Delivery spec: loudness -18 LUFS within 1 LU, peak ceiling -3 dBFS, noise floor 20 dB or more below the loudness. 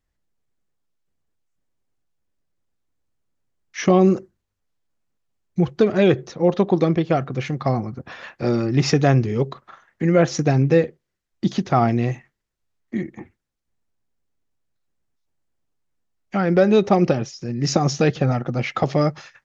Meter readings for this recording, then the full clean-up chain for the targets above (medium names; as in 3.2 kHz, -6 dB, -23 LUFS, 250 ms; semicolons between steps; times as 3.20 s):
loudness -20.0 LUFS; peak level -4.0 dBFS; loudness target -18.0 LUFS
-> trim +2 dB; peak limiter -3 dBFS